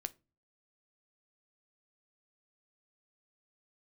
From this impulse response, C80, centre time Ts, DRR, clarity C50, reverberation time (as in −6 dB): 30.0 dB, 2 ms, 11.5 dB, 22.5 dB, 0.30 s